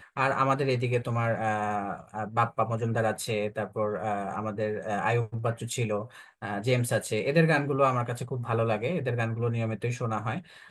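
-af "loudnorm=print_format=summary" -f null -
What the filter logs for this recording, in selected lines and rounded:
Input Integrated:    -28.8 LUFS
Input True Peak:      -9.7 dBTP
Input LRA:             2.6 LU
Input Threshold:     -38.9 LUFS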